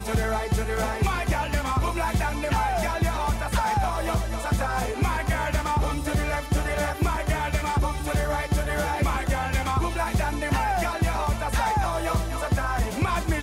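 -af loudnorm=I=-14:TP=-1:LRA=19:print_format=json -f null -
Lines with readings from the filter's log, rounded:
"input_i" : "-25.8",
"input_tp" : "-12.7",
"input_lra" : "0.7",
"input_thresh" : "-35.8",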